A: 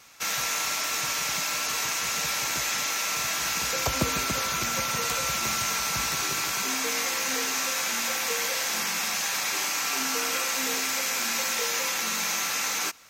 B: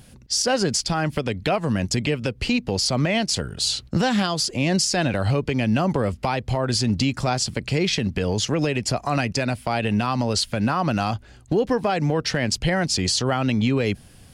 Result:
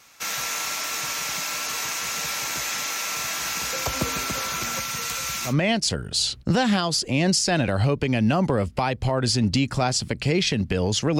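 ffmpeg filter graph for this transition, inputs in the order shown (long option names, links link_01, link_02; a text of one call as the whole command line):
ffmpeg -i cue0.wav -i cue1.wav -filter_complex "[0:a]asettb=1/sr,asplit=3[link_01][link_02][link_03];[link_01]atrim=end=4.794[link_04];[link_02]atrim=start=4.79:end=5.54,asetpts=PTS-STARTPTS,afade=type=in:duration=0.004:curve=qsin,afade=type=out:start_time=0.746:duration=0.004:curve=qsin,equalizer=frequency=530:width=0.58:gain=-7[link_05];[link_03]atrim=start=5.536[link_06];[link_04][link_05]acrossfade=duration=0.004:curve1=hsin:curve2=qsin[link_07];[link_07][link_06]acrossfade=duration=0.004:curve1=qsin:curve2=hsin,apad=whole_dur=11.19,atrim=end=11.19,atrim=end=5.54,asetpts=PTS-STARTPTS[link_08];[1:a]atrim=start=2.9:end=8.65,asetpts=PTS-STARTPTS[link_09];[link_08][link_09]acrossfade=duration=0.1:curve1=tri:curve2=tri" out.wav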